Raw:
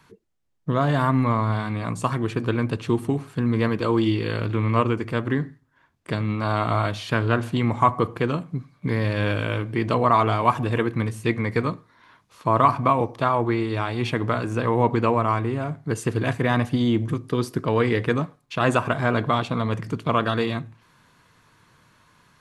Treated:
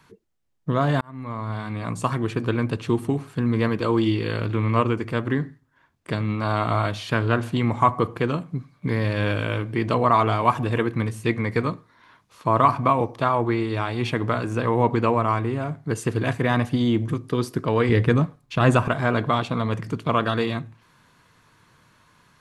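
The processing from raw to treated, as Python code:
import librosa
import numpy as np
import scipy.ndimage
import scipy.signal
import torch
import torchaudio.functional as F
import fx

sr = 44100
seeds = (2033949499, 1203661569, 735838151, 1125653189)

y = fx.low_shelf(x, sr, hz=170.0, db=11.5, at=(17.89, 18.88))
y = fx.edit(y, sr, fx.fade_in_span(start_s=1.01, length_s=0.98), tone=tone)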